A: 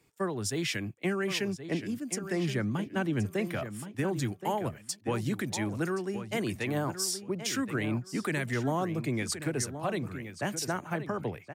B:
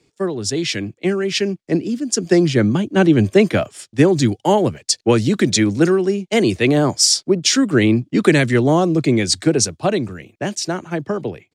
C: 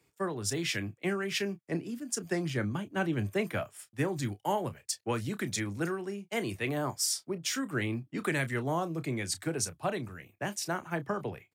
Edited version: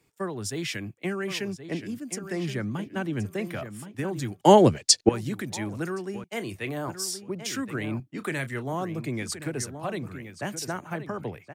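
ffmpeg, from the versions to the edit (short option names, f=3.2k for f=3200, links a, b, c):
-filter_complex "[2:a]asplit=2[a][b];[0:a]asplit=4[c][d][e][f];[c]atrim=end=4.412[g];[1:a]atrim=start=4.408:end=5.092[h];[d]atrim=start=5.088:end=6.242[i];[a]atrim=start=6.238:end=6.882[j];[e]atrim=start=6.878:end=8.002[k];[b]atrim=start=7.998:end=8.732[l];[f]atrim=start=8.728[m];[g][h]acrossfade=d=0.004:c1=hsin:c2=hsin[n];[n][i]acrossfade=d=0.004:c1=hsin:c2=hsin[o];[o][j]acrossfade=d=0.004:c1=hsin:c2=hsin[p];[p][k]acrossfade=d=0.004:c1=hsin:c2=hsin[q];[q][l]acrossfade=d=0.004:c1=hsin:c2=hsin[r];[r][m]acrossfade=d=0.004:c1=hsin:c2=hsin"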